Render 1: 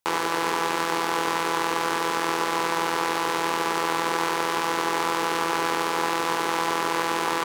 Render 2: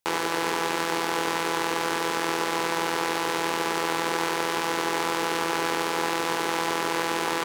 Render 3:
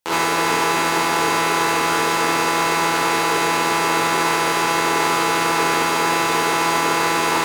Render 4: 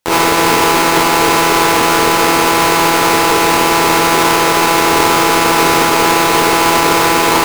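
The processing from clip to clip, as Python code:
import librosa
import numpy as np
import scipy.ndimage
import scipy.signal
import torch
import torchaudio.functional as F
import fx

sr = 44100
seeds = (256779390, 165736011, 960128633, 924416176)

y1 = fx.peak_eq(x, sr, hz=1100.0, db=-4.5, octaves=0.58)
y2 = fx.rev_gated(y1, sr, seeds[0], gate_ms=90, shape='rising', drr_db=-8.0)
y3 = fx.halfwave_hold(y2, sr)
y3 = y3 * 10.0 ** (3.0 / 20.0)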